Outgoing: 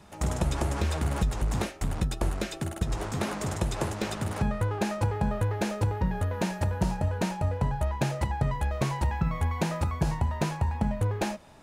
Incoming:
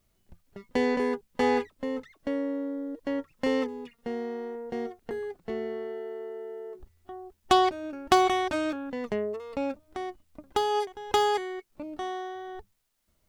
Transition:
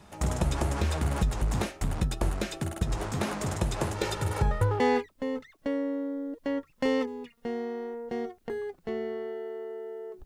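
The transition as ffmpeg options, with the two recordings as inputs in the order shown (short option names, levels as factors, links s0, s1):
-filter_complex "[0:a]asettb=1/sr,asplit=3[s0][s1][s2];[s0]atrim=end=3.954[s3];[s1]atrim=start=3.95:end=4.8,asetpts=PTS-STARTPTS,afade=t=in:d=0.004:c=qsin,afade=t=out:st=0.846:d=0.004:c=qsin,aecho=1:1:2.2:0.74,atrim=end_sample=37485[s4];[s2]atrim=start=4.796[s5];[s3][s4]acrossfade=d=0.004:c1=hsin:c2=qsin[s6];[s6][s5]acrossfade=d=0.004:c1=qsin:c2=hsin,apad=whole_dur=10.25,atrim=end=10.25,atrim=end=4.802[s7];[1:a]atrim=start=1.408:end=6.86[s8];[s7][s8]acrossfade=d=0.004:c1=hsin:c2=hsin"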